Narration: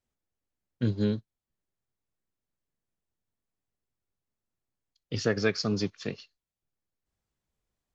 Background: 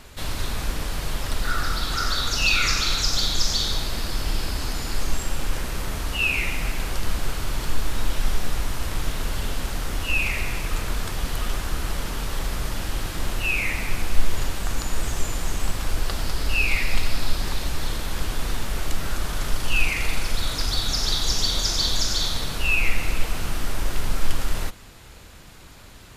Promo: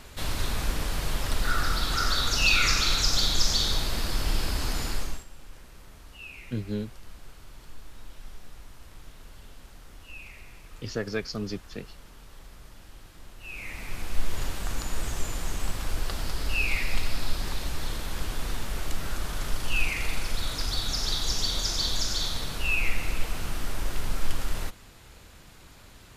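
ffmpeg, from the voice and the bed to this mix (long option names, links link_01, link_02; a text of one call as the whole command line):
ffmpeg -i stem1.wav -i stem2.wav -filter_complex "[0:a]adelay=5700,volume=-4.5dB[link_01];[1:a]volume=14.5dB,afade=type=out:start_time=4.84:duration=0.41:silence=0.105925,afade=type=in:start_time=13.38:duration=1.08:silence=0.158489[link_02];[link_01][link_02]amix=inputs=2:normalize=0" out.wav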